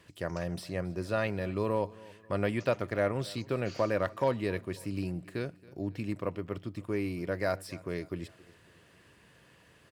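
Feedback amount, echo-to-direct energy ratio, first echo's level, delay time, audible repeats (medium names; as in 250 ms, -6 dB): 46%, -20.5 dB, -21.5 dB, 273 ms, 3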